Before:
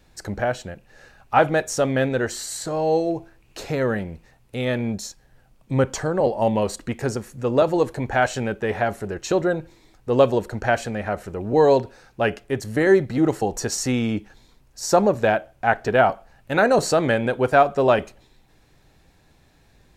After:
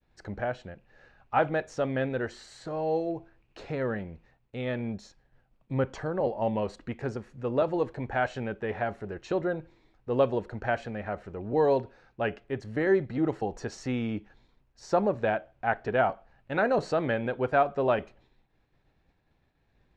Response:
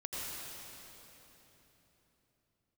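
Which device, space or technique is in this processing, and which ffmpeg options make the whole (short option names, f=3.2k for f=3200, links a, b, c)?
hearing-loss simulation: -af "lowpass=3.2k,agate=range=-33dB:threshold=-51dB:ratio=3:detection=peak,volume=-8dB"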